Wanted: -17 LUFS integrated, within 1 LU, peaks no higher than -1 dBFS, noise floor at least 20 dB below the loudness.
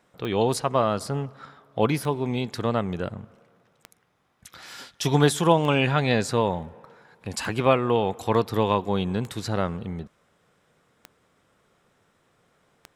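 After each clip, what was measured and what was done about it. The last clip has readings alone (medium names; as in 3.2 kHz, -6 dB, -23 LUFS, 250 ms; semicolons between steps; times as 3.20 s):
clicks found 8; loudness -24.5 LUFS; peak level -4.0 dBFS; loudness target -17.0 LUFS
-> de-click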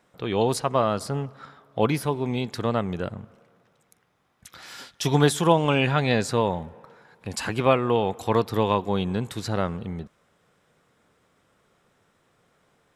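clicks found 0; loudness -24.5 LUFS; peak level -4.0 dBFS; loudness target -17.0 LUFS
-> trim +7.5 dB; peak limiter -1 dBFS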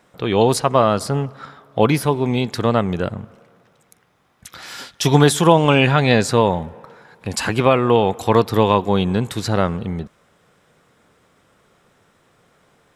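loudness -17.5 LUFS; peak level -1.0 dBFS; noise floor -59 dBFS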